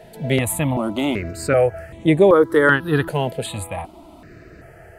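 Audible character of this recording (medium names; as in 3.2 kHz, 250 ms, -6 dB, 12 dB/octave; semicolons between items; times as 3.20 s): notches that jump at a steady rate 2.6 Hz 310–4900 Hz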